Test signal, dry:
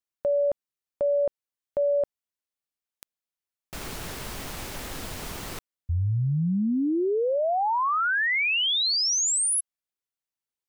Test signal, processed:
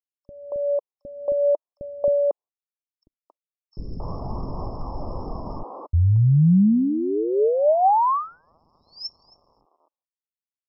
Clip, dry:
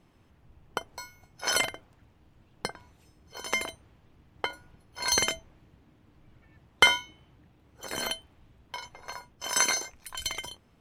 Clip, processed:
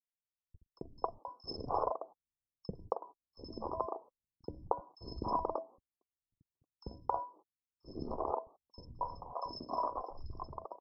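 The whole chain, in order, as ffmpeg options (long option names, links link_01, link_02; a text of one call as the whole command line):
ffmpeg -i in.wav -filter_complex "[0:a]agate=range=-54dB:threshold=-51dB:ratio=16:release=112:detection=rms,dynaudnorm=framelen=530:gausssize=5:maxgain=7.5dB,alimiter=limit=-10dB:level=0:latency=1:release=438,aphaser=in_gain=1:out_gain=1:delay=4:decay=0.32:speed=0.46:type=triangular,asuperstop=centerf=2600:order=20:qfactor=0.57,acrossover=split=360|2800[link_01][link_02][link_03];[link_01]adelay=40[link_04];[link_02]adelay=270[link_05];[link_04][link_05][link_03]amix=inputs=3:normalize=0" -ar 12000 -c:a libmp3lame -b:a 40k out.mp3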